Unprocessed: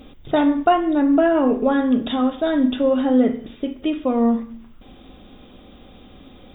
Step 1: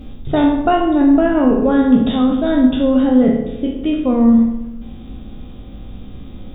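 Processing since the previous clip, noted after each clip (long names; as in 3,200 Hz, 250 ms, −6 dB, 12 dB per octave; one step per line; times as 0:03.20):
peak hold with a decay on every bin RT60 0.60 s
bass and treble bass +13 dB, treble −1 dB
feedback echo with a low-pass in the loop 65 ms, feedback 71%, low-pass 1,800 Hz, level −7.5 dB
level −1 dB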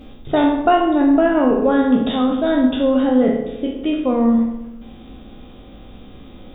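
bass and treble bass −10 dB, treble −2 dB
level +1 dB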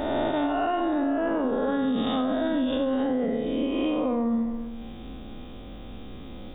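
peak hold with a rise ahead of every peak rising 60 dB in 1.45 s
brickwall limiter −8 dBFS, peak gain reduction 6 dB
downward compressor, threshold −19 dBFS, peak gain reduction 7.5 dB
level −3.5 dB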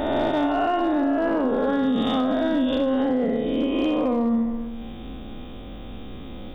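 hard clipping −19 dBFS, distortion −30 dB
level +3.5 dB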